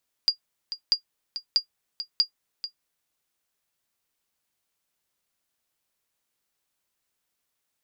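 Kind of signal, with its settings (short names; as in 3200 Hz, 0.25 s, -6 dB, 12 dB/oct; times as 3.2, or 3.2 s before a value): sonar ping 4820 Hz, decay 0.10 s, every 0.64 s, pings 4, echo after 0.44 s, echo -12 dB -11 dBFS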